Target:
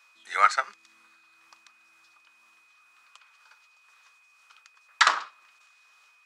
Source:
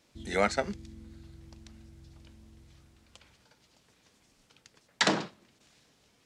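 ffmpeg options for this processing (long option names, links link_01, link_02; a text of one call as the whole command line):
ffmpeg -i in.wav -af "tremolo=f=2:d=0.49,aeval=exprs='val(0)+0.000631*sin(2*PI*2500*n/s)':channel_layout=same,highpass=frequency=1200:width_type=q:width=4.6,volume=2.5dB" out.wav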